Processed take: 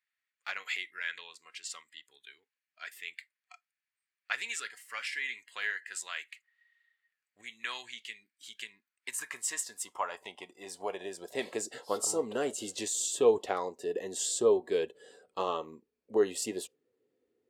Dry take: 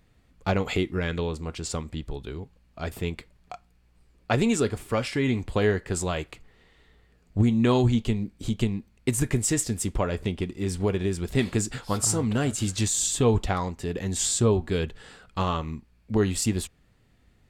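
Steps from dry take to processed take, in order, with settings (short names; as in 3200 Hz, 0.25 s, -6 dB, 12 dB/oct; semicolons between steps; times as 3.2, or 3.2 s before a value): high-pass sweep 1800 Hz -> 440 Hz, 8.37–11.98; spectral noise reduction 14 dB; gain -7 dB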